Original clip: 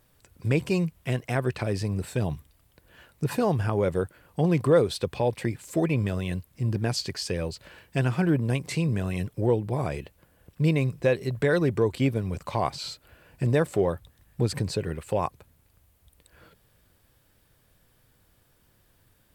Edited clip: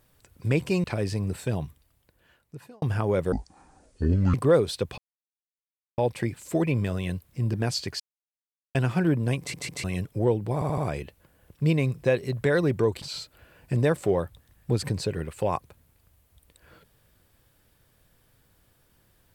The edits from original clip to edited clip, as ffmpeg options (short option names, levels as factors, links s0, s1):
-filter_complex "[0:a]asplit=15[s0][s1][s2][s3][s4][s5][s6][s7][s8][s9][s10][s11][s12][s13][s14];[s0]atrim=end=0.842[s15];[s1]atrim=start=1.528:end=3.51,asetpts=PTS-STARTPTS,afade=t=out:st=0.512:d=1.47[s16];[s2]atrim=start=3.51:end=4.014,asetpts=PTS-STARTPTS,afade=t=in:d=0.004:c=hsin[s17];[s3]atrim=start=4.01:end=4.56,asetpts=PTS-STARTPTS,asetrate=23814,aresample=44100[s18];[s4]atrim=start=4.556:end=5.2,asetpts=PTS-STARTPTS,afade=t=out:st=0.64:d=0.004:c=hsin,apad=pad_dur=1[s19];[s5]atrim=start=5.2:end=7.22,asetpts=PTS-STARTPTS,afade=t=in:d=0.004:c=hsin,afade=t=out:st=2.016:d=0.004:c=hsin[s20];[s6]atrim=start=7.22:end=7.97,asetpts=PTS-STARTPTS,volume=0[s21];[s7]atrim=start=7.97:end=8.762,asetpts=PTS-STARTPTS,afade=t=in:d=0.004:c=hsin[s22];[s8]atrim=start=8.608:end=8.762[s23];[s9]atrim=start=8.608:end=8.762[s24];[s10]atrim=start=9.058:end=9.842[s25];[s11]atrim=start=9.758:end=9.842[s26];[s12]atrim=start=9.758:end=9.842[s27];[s13]atrim=start=9.758:end=12.002[s28];[s14]atrim=start=12.718[s29];[s16][s17]concat=n=2:v=0:a=1[s30];[s15][s30]acrossfade=d=0.004:c1=hsin:c2=hsin[s31];[s31][s18]acrossfade=d=0.004:c1=hsin:c2=hsin[s32];[s19][s20][s21][s22]concat=n=4:v=0:a=1[s33];[s32][s33]acrossfade=d=0.004:c1=hsin:c2=hsin[s34];[s34][s23]acrossfade=d=0.004:c1=hsin:c2=hsin[s35];[s35][s24]acrossfade=d=0.004:c1=hsin:c2=hsin[s36];[s36][s25]acrossfade=d=0.004:c1=hsin:c2=hsin[s37];[s37][s26]acrossfade=d=0.004:c1=hsin:c2=hsin[s38];[s38][s27]acrossfade=d=0.004:c1=hsin:c2=hsin[s39];[s39][s28]acrossfade=d=0.004:c1=hsin:c2=hsin[s40];[s40][s29]acrossfade=d=0.004:c1=hsin:c2=hsin"